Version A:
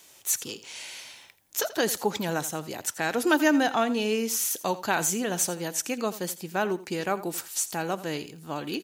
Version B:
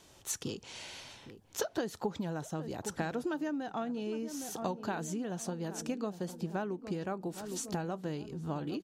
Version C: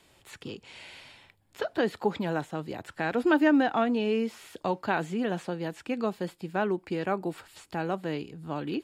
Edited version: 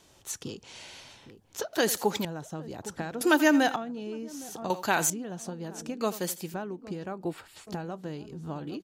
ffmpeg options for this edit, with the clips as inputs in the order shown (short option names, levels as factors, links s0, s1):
-filter_complex "[0:a]asplit=4[s0][s1][s2][s3];[1:a]asplit=6[s4][s5][s6][s7][s8][s9];[s4]atrim=end=1.732[s10];[s0]atrim=start=1.728:end=2.252[s11];[s5]atrim=start=2.248:end=3.212[s12];[s1]atrim=start=3.208:end=3.762[s13];[s6]atrim=start=3.758:end=4.702[s14];[s2]atrim=start=4.698:end=5.102[s15];[s7]atrim=start=5.098:end=6.012[s16];[s3]atrim=start=6.008:end=6.542[s17];[s8]atrim=start=6.538:end=7.252[s18];[2:a]atrim=start=7.248:end=7.672[s19];[s9]atrim=start=7.668[s20];[s10][s11]acrossfade=d=0.004:c1=hsin:c2=hsin[s21];[s21][s12]acrossfade=d=0.004:c1=hsin:c2=hsin[s22];[s22][s13]acrossfade=d=0.004:c1=hsin:c2=hsin[s23];[s23][s14]acrossfade=d=0.004:c1=hsin:c2=hsin[s24];[s24][s15]acrossfade=d=0.004:c1=hsin:c2=hsin[s25];[s25][s16]acrossfade=d=0.004:c1=hsin:c2=hsin[s26];[s26][s17]acrossfade=d=0.004:c1=hsin:c2=hsin[s27];[s27][s18]acrossfade=d=0.004:c1=hsin:c2=hsin[s28];[s28][s19]acrossfade=d=0.004:c1=hsin:c2=hsin[s29];[s29][s20]acrossfade=d=0.004:c1=hsin:c2=hsin"